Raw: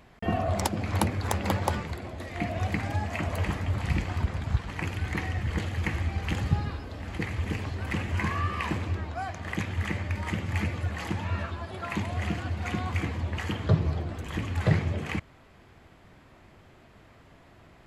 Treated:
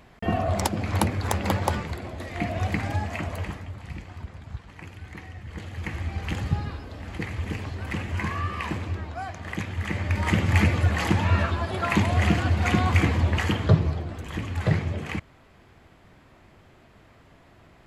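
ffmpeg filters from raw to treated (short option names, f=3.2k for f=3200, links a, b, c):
-af "volume=21.5dB,afade=t=out:st=2.93:d=0.81:silence=0.237137,afade=t=in:st=5.46:d=0.74:silence=0.316228,afade=t=in:st=9.84:d=0.55:silence=0.354813,afade=t=out:st=13.24:d=0.74:silence=0.375837"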